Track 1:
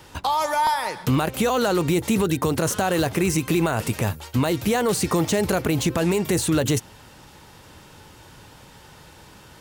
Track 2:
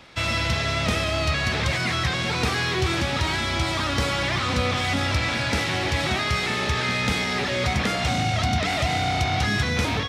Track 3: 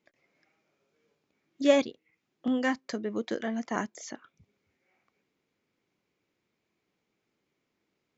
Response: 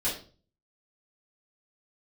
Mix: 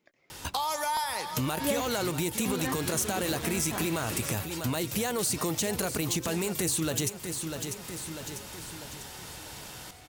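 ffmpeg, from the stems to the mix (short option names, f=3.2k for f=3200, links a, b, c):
-filter_complex "[0:a]highshelf=f=3.4k:g=11,adelay=300,volume=-0.5dB,asplit=2[a][b];[b]volume=-12dB[c];[1:a]asoftclip=type=tanh:threshold=-29.5dB,adelay=200,volume=-0.5dB,asplit=2[d][e];[e]volume=-22.5dB[f];[2:a]volume=2.5dB,asplit=2[g][h];[h]apad=whole_len=453482[i];[d][i]sidechaingate=range=-33dB:threshold=-56dB:ratio=16:detection=peak[j];[c][f]amix=inputs=2:normalize=0,aecho=0:1:646|1292|1938|2584|3230|3876:1|0.4|0.16|0.064|0.0256|0.0102[k];[a][j][g][k]amix=inputs=4:normalize=0,acompressor=threshold=-35dB:ratio=2"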